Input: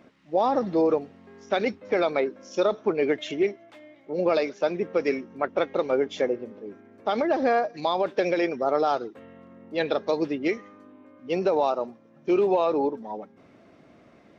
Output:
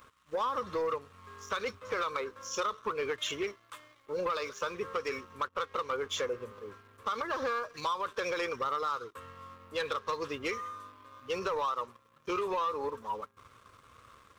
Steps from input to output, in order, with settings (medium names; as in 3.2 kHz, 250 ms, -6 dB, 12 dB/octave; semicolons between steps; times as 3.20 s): FFT filter 100 Hz 0 dB, 170 Hz -19 dB, 330 Hz -21 dB, 490 Hz -8 dB, 720 Hz -25 dB, 1.1 kHz +8 dB, 2 kHz -9 dB, 3.3 kHz -2 dB, 4.9 kHz -6 dB, 8.4 kHz +9 dB; compression 6:1, threshold -35 dBFS, peak gain reduction 11.5 dB; waveshaping leveller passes 2